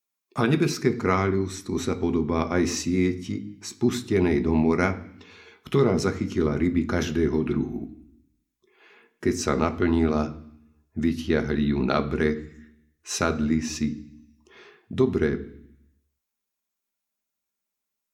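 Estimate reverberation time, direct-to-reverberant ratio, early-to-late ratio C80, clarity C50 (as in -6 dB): 0.65 s, 6.5 dB, 18.5 dB, 15.5 dB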